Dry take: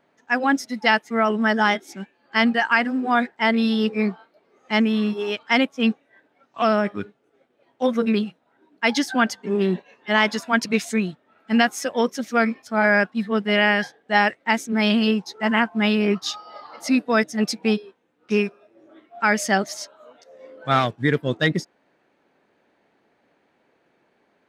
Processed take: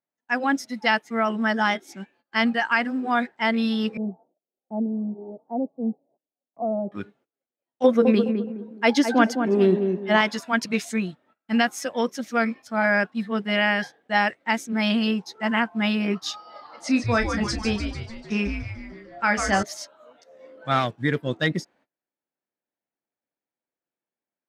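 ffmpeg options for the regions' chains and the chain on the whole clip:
-filter_complex "[0:a]asettb=1/sr,asplit=3[s0][s1][s2];[s0]atrim=end=3.974[s3];[s1]atrim=start=3.97:end=6.92,asetpts=PTS-STARTPTS,afade=t=in:d=0.004:c=qsin,afade=t=out:st=2.946:d=0.004:c=qsin,asuperpass=centerf=330:order=12:qfactor=0.51,equalizer=f=280:w=0.43:g=-3[s4];[s2]atrim=start=6.916[s5];[s3][s4]acrossfade=d=0.004:c1=hsin:c2=qsin[s6];[s6][s5]acrossfade=d=0.004:c1=qsin:c2=hsin,asettb=1/sr,asplit=3[s7][s8][s9];[s7]atrim=end=7.844[s10];[s8]atrim=start=7.84:end=10.21,asetpts=PTS-STARTPTS,afade=t=in:d=0.004:c=qsin,afade=t=out:st=2.366:d=0.004:c=qsin,equalizer=f=430:t=o:w=1.9:g=8.5,asplit=2[s11][s12];[s12]adelay=209,lowpass=f=830:p=1,volume=0.562,asplit=2[s13][s14];[s14]adelay=209,lowpass=f=830:p=1,volume=0.36,asplit=2[s15][s16];[s16]adelay=209,lowpass=f=830:p=1,volume=0.36,asplit=2[s17][s18];[s18]adelay=209,lowpass=f=830:p=1,volume=0.36[s19];[s11][s13][s15][s17][s19]amix=inputs=5:normalize=0,atrim=end_sample=104517[s20];[s9]atrim=start=10.206[s21];[s10][s20]acrossfade=d=0.004:c1=hsin:c2=qsin[s22];[s22][s21]acrossfade=d=0.004:c1=qsin:c2=hsin,asettb=1/sr,asplit=3[s23][s24][s25];[s23]atrim=end=16.804[s26];[s24]atrim=start=16.8:end=19.63,asetpts=PTS-STARTPTS,afade=t=in:d=0.004:c=qsin,afade=t=out:st=2.826:d=0.004:c=qsin,lowpass=f=8900:w=0.5412,lowpass=f=8900:w=1.3066,asplit=2[s27][s28];[s28]adelay=30,volume=0.355[s29];[s27][s29]amix=inputs=2:normalize=0,atrim=end_sample=124803,asplit=9[s30][s31][s32][s33][s34][s35][s36][s37][s38];[s31]adelay=148,afreqshift=-150,volume=0.473[s39];[s32]adelay=296,afreqshift=-300,volume=0.275[s40];[s33]adelay=444,afreqshift=-450,volume=0.158[s41];[s34]adelay=592,afreqshift=-600,volume=0.0923[s42];[s35]adelay=740,afreqshift=-750,volume=0.0537[s43];[s36]adelay=888,afreqshift=-900,volume=0.0309[s44];[s37]adelay=1036,afreqshift=-1050,volume=0.018[s45];[s38]adelay=1184,afreqshift=-1200,volume=0.0105[s46];[s30][s39][s40][s41][s42][s43][s44][s45][s46]amix=inputs=9:normalize=0,atrim=end_sample=124803[s47];[s25]atrim=start=19.626[s48];[s26][s47]acrossfade=d=0.004:c1=hsin:c2=qsin[s49];[s49][s48]acrossfade=d=0.004:c1=qsin:c2=hsin,bandreject=f=420:w=12,agate=range=0.0447:threshold=0.00224:ratio=16:detection=peak,volume=0.708"

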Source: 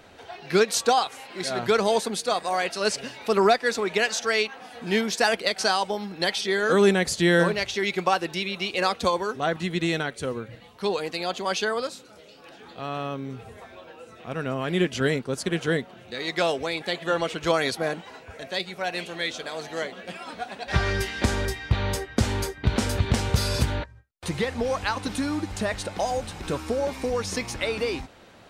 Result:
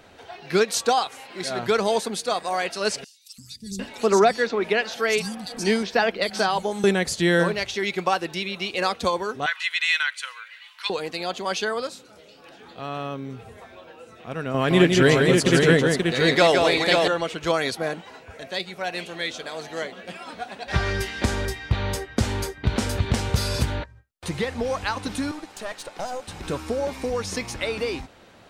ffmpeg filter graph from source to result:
-filter_complex "[0:a]asettb=1/sr,asplit=3[s0][s1][s2];[s0]atrim=end=3.044[s3];[s1]atrim=start=3.04:end=6.84,asetpts=PTS-STARTPTS,afade=t=in:d=0.004:c=qsin,afade=t=out:st=3.796:d=0.004:c=qsin,lowshelf=f=380:g=6.5,acrossover=split=170|4800[s4][s5][s6];[s4]adelay=340[s7];[s5]adelay=750[s8];[s7][s8][s6]amix=inputs=3:normalize=0,atrim=end_sample=167580[s9];[s2]atrim=start=6.836[s10];[s3][s9]acrossfade=d=0.004:c1=hsin:c2=qsin[s11];[s11][s10]acrossfade=d=0.004:c1=qsin:c2=hsin,asettb=1/sr,asplit=3[s12][s13][s14];[s12]atrim=end=9.464[s15];[s13]atrim=start=9.46:end=10.9,asetpts=PTS-STARTPTS,afade=t=in:d=0.004:c=qsin,afade=t=out:st=1.436:d=0.004:c=qsin,highpass=f=1200:w=0.5412,highpass=f=1200:w=1.3066,equalizer=f=2400:w=0.76:g=9.5,aecho=1:1:2:0.33,atrim=end_sample=63504[s16];[s14]atrim=start=10.896[s17];[s15][s16]acrossfade=d=0.004:c1=hsin:c2=qsin[s18];[s18][s17]acrossfade=d=0.004:c1=qsin:c2=hsin,asettb=1/sr,asplit=3[s19][s20][s21];[s19]atrim=end=14.544[s22];[s20]atrim=start=14.54:end=17.08,asetpts=PTS-STARTPTS,afade=t=in:d=0.004:c=qsin,afade=t=out:st=2.536:d=0.004:c=qsin,acontrast=75,aecho=1:1:164|532:0.596|0.631,atrim=end_sample=112014[s23];[s21]atrim=start=17.076[s24];[s22][s23]acrossfade=d=0.004:c1=hsin:c2=qsin[s25];[s25][s24]acrossfade=d=0.004:c1=qsin:c2=hsin,asettb=1/sr,asplit=3[s26][s27][s28];[s26]atrim=end=25.314[s29];[s27]atrim=start=25.31:end=26.28,asetpts=PTS-STARTPTS,afade=t=in:d=0.004:c=qsin,afade=t=out:st=0.966:d=0.004:c=qsin,highpass=370,bandreject=f=2100:w=26,aeval=exprs='(tanh(15.8*val(0)+0.7)-tanh(0.7))/15.8':c=same[s30];[s28]atrim=start=26.276[s31];[s29][s30]acrossfade=d=0.004:c1=hsin:c2=qsin[s32];[s32][s31]acrossfade=d=0.004:c1=qsin:c2=hsin"

